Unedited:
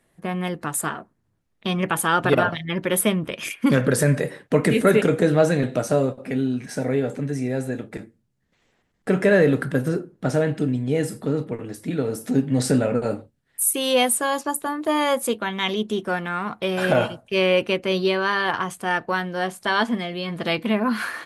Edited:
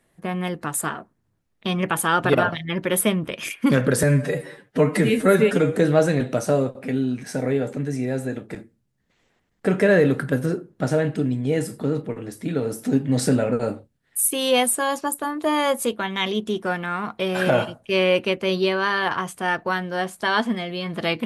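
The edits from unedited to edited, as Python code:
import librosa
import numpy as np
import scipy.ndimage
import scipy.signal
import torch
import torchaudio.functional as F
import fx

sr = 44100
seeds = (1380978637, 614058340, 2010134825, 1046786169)

y = fx.edit(x, sr, fx.stretch_span(start_s=4.03, length_s=1.15, factor=1.5), tone=tone)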